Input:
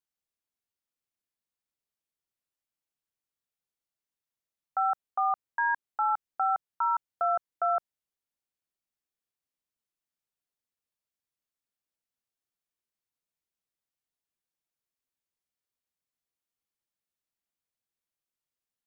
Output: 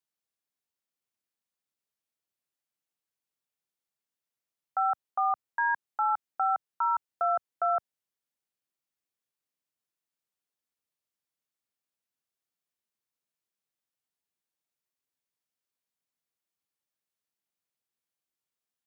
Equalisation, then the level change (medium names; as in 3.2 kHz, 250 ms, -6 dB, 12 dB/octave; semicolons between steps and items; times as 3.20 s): high-pass 100 Hz; 0.0 dB